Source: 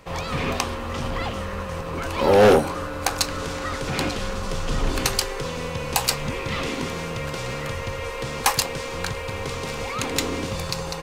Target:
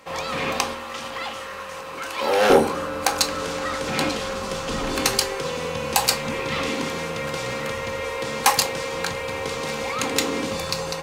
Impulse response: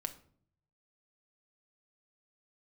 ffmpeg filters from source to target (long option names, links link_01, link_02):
-filter_complex "[0:a]asetnsamples=nb_out_samples=441:pad=0,asendcmd='0.73 highpass f 1200;2.5 highpass f 220',highpass=frequency=400:poles=1[link_01];[1:a]atrim=start_sample=2205,asetrate=66150,aresample=44100[link_02];[link_01][link_02]afir=irnorm=-1:irlink=0,volume=7dB"